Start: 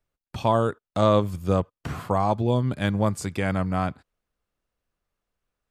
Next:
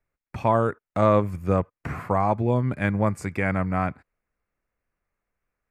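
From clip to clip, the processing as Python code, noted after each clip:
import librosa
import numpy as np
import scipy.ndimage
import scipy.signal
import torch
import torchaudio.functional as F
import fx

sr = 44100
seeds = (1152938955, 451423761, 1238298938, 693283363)

y = fx.high_shelf_res(x, sr, hz=2700.0, db=-6.5, q=3.0)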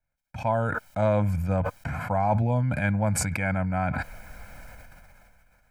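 y = fx.rider(x, sr, range_db=10, speed_s=2.0)
y = y + 0.86 * np.pad(y, (int(1.3 * sr / 1000.0), 0))[:len(y)]
y = fx.sustainer(y, sr, db_per_s=21.0)
y = y * 10.0 ** (-6.5 / 20.0)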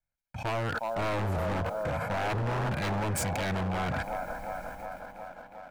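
y = fx.echo_wet_bandpass(x, sr, ms=361, feedback_pct=73, hz=690.0, wet_db=-5)
y = fx.leveller(y, sr, passes=1)
y = 10.0 ** (-19.0 / 20.0) * (np.abs((y / 10.0 ** (-19.0 / 20.0) + 3.0) % 4.0 - 2.0) - 1.0)
y = y * 10.0 ** (-6.0 / 20.0)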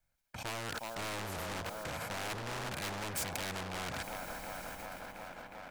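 y = fx.spectral_comp(x, sr, ratio=2.0)
y = y * 10.0 ** (3.0 / 20.0)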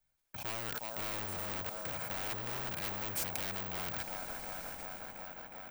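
y = (np.kron(x[::2], np.eye(2)[0]) * 2)[:len(x)]
y = y * 10.0 ** (-2.5 / 20.0)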